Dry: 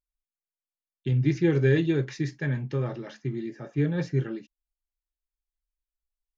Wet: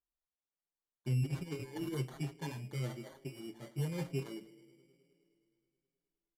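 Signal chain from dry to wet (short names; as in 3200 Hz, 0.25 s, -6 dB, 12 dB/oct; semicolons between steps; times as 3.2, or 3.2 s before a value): 1.22–1.94 negative-ratio compressor -27 dBFS, ratio -0.5; band-limited delay 0.105 s, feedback 77%, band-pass 440 Hz, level -18.5 dB; sample-and-hold 17×; downsampling 32000 Hz; endless flanger 6.4 ms +1.1 Hz; gain -7.5 dB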